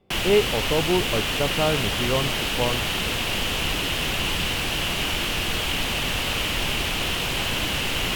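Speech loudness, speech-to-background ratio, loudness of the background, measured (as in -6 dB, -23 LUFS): -26.0 LUFS, -2.0 dB, -24.0 LUFS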